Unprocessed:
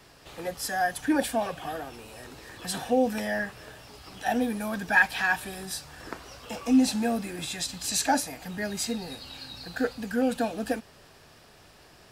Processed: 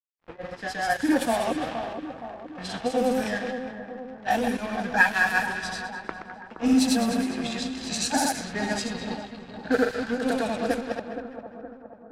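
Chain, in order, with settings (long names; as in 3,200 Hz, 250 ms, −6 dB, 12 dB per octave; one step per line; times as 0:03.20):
delay that plays each chunk backwards 102 ms, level −6 dB
in parallel at −2 dB: speech leveller within 4 dB 0.5 s
on the sum: dead-zone distortion −33 dBFS
granular cloud 203 ms, grains 11 per second, spray 100 ms, pitch spread up and down by 0 semitones
echo with a time of its own for lows and highs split 1,400 Hz, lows 470 ms, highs 206 ms, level −9 dB
low-pass that shuts in the quiet parts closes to 1,700 Hz, open at −19.5 dBFS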